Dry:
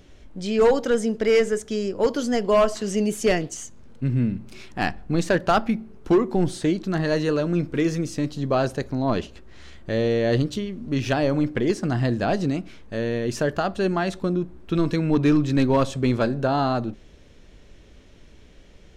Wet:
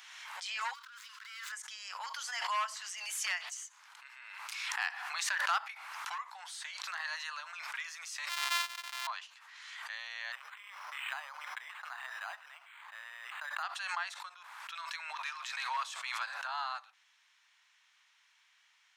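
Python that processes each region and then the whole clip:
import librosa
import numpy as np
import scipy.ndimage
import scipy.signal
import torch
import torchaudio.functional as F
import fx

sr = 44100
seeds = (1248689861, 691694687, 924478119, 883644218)

y = fx.chain(x, sr, fx.median_filter(points=15),
    fx.cheby_ripple_highpass(hz=980.0, ripple_db=6),
    fx.over_compress(threshold_db=-46.0, ratio=-1.0), at=(0.73, 1.52))
y = fx.chain(y, sr, fx.sample_sort(block=128),
    fx.peak_eq(hz=3800.0, db=7.5, octaves=1.4),
    fx.upward_expand(threshold_db=-31.0, expansion=2.5), at=(8.29, 9.07))
y = fx.chain(y, sr, fx.lowpass(hz=3600.0, slope=6),
    fx.resample_linear(factor=8), at=(10.32, 13.63))
y = scipy.signal.sosfilt(scipy.signal.butter(8, 910.0, 'highpass', fs=sr, output='sos'), y)
y = fx.peak_eq(y, sr, hz=2000.0, db=2.5, octaves=0.77)
y = fx.pre_swell(y, sr, db_per_s=31.0)
y = y * 10.0 ** (-8.5 / 20.0)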